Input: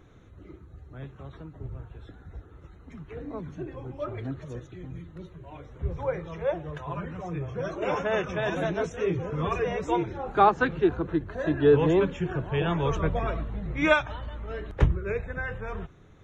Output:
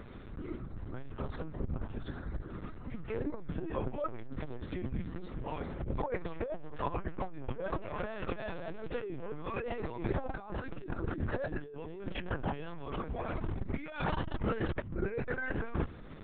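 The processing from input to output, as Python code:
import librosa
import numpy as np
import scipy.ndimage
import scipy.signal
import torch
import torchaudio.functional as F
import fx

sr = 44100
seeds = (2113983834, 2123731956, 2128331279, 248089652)

y = fx.over_compress(x, sr, threshold_db=-35.0, ratio=-1.0)
y = fx.lpc_vocoder(y, sr, seeds[0], excitation='pitch_kept', order=10)
y = fx.transformer_sat(y, sr, knee_hz=130.0)
y = y * 10.0 ** (1.0 / 20.0)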